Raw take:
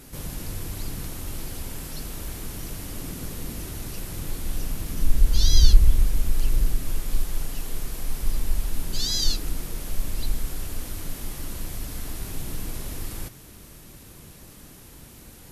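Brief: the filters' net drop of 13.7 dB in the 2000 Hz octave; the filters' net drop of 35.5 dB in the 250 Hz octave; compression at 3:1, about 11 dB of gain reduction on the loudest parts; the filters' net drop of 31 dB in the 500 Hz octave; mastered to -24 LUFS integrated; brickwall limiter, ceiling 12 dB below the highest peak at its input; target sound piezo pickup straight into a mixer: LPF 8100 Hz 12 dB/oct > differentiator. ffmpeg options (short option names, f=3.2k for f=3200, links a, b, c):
-af "equalizer=f=250:t=o:g=-6,equalizer=f=500:t=o:g=-8,equalizer=f=2k:t=o:g=-3.5,acompressor=threshold=-21dB:ratio=3,alimiter=level_in=0.5dB:limit=-24dB:level=0:latency=1,volume=-0.5dB,lowpass=8.1k,aderivative,volume=21.5dB"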